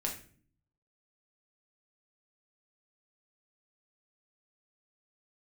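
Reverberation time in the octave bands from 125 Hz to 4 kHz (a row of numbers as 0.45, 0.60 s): 0.95, 0.80, 0.55, 0.40, 0.45, 0.35 s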